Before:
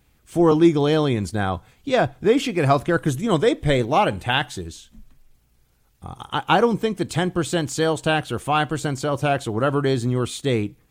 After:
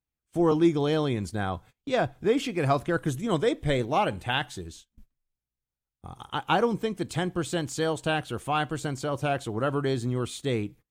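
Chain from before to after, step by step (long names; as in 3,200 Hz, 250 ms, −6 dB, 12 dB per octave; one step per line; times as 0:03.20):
noise gate −41 dBFS, range −24 dB
level −6.5 dB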